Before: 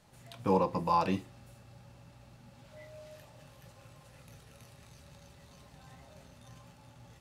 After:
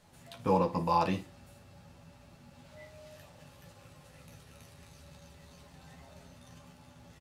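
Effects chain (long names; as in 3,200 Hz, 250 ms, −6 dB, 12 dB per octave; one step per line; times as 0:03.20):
ambience of single reflections 12 ms −5.5 dB, 56 ms −14.5 dB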